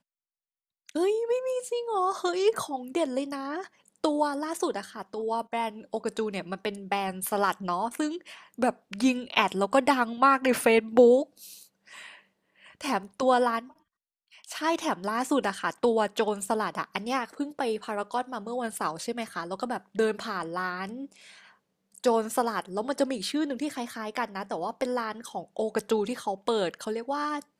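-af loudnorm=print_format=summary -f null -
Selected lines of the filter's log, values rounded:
Input Integrated:    -28.6 LUFS
Input True Peak:      -5.3 dBTP
Input LRA:             6.3 LU
Input Threshold:     -39.1 LUFS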